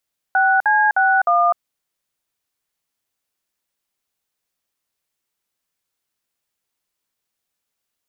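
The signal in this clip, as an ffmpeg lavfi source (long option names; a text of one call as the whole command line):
ffmpeg -f lavfi -i "aevalsrc='0.178*clip(min(mod(t,0.307),0.253-mod(t,0.307))/0.002,0,1)*(eq(floor(t/0.307),0)*(sin(2*PI*770*mod(t,0.307))+sin(2*PI*1477*mod(t,0.307)))+eq(floor(t/0.307),1)*(sin(2*PI*852*mod(t,0.307))+sin(2*PI*1633*mod(t,0.307)))+eq(floor(t/0.307),2)*(sin(2*PI*770*mod(t,0.307))+sin(2*PI*1477*mod(t,0.307)))+eq(floor(t/0.307),3)*(sin(2*PI*697*mod(t,0.307))+sin(2*PI*1209*mod(t,0.307))))':duration=1.228:sample_rate=44100" out.wav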